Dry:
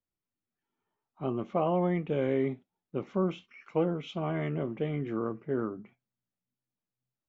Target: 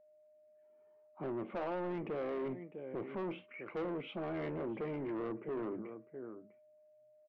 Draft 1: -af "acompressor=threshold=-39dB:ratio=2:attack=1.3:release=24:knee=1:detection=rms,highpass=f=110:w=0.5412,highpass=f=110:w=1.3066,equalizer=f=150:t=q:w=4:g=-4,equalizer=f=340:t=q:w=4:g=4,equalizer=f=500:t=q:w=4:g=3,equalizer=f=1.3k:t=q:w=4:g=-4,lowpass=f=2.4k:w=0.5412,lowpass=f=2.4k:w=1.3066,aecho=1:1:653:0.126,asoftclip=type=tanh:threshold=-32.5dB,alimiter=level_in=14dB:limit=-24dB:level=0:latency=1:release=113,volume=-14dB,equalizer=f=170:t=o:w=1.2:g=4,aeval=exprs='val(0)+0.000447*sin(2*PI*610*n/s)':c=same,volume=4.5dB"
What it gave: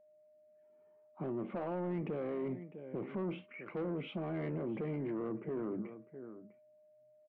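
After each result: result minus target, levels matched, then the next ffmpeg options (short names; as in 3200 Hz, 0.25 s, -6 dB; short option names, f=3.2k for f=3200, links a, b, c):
125 Hz band +4.5 dB; compressor: peak gain reduction +4 dB
-af "acompressor=threshold=-39dB:ratio=2:attack=1.3:release=24:knee=1:detection=rms,highpass=f=110:w=0.5412,highpass=f=110:w=1.3066,equalizer=f=150:t=q:w=4:g=-4,equalizer=f=340:t=q:w=4:g=4,equalizer=f=500:t=q:w=4:g=3,equalizer=f=1.3k:t=q:w=4:g=-4,lowpass=f=2.4k:w=0.5412,lowpass=f=2.4k:w=1.3066,aecho=1:1:653:0.126,asoftclip=type=tanh:threshold=-32.5dB,alimiter=level_in=14dB:limit=-24dB:level=0:latency=1:release=113,volume=-14dB,equalizer=f=170:t=o:w=1.2:g=-3.5,aeval=exprs='val(0)+0.000447*sin(2*PI*610*n/s)':c=same,volume=4.5dB"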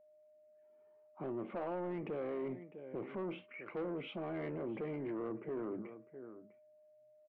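compressor: peak gain reduction +4 dB
-af "acompressor=threshold=-30.5dB:ratio=2:attack=1.3:release=24:knee=1:detection=rms,highpass=f=110:w=0.5412,highpass=f=110:w=1.3066,equalizer=f=150:t=q:w=4:g=-4,equalizer=f=340:t=q:w=4:g=4,equalizer=f=500:t=q:w=4:g=3,equalizer=f=1.3k:t=q:w=4:g=-4,lowpass=f=2.4k:w=0.5412,lowpass=f=2.4k:w=1.3066,aecho=1:1:653:0.126,asoftclip=type=tanh:threshold=-32.5dB,alimiter=level_in=14dB:limit=-24dB:level=0:latency=1:release=113,volume=-14dB,equalizer=f=170:t=o:w=1.2:g=-3.5,aeval=exprs='val(0)+0.000447*sin(2*PI*610*n/s)':c=same,volume=4.5dB"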